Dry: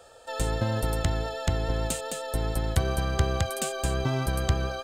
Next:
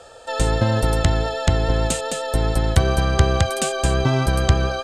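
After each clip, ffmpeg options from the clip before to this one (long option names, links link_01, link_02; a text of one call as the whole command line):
ffmpeg -i in.wav -af "lowpass=8900,volume=8.5dB" out.wav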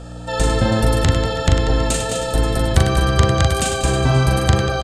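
ffmpeg -i in.wav -filter_complex "[0:a]aeval=exprs='val(0)+0.02*(sin(2*PI*60*n/s)+sin(2*PI*2*60*n/s)/2+sin(2*PI*3*60*n/s)/3+sin(2*PI*4*60*n/s)/4+sin(2*PI*5*60*n/s)/5)':channel_layout=same,asplit=2[link_01][link_02];[link_02]aecho=0:1:40|100|190|325|527.5:0.631|0.398|0.251|0.158|0.1[link_03];[link_01][link_03]amix=inputs=2:normalize=0,volume=1dB" out.wav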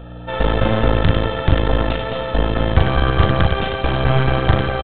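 ffmpeg -i in.wav -af "aeval=exprs='0.891*(cos(1*acos(clip(val(0)/0.891,-1,1)))-cos(1*PI/2))+0.158*(cos(6*acos(clip(val(0)/0.891,-1,1)))-cos(6*PI/2))':channel_layout=same,aresample=8000,aresample=44100,volume=-1dB" out.wav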